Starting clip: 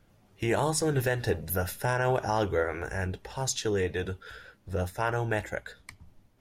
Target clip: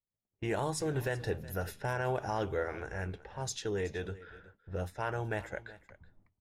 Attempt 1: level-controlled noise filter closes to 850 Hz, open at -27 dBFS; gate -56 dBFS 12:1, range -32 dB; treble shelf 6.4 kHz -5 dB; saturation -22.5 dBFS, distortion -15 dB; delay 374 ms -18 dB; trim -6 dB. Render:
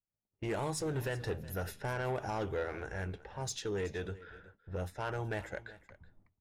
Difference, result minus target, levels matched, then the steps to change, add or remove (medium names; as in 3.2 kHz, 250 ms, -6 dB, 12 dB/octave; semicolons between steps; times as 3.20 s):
saturation: distortion +17 dB
change: saturation -11.5 dBFS, distortion -32 dB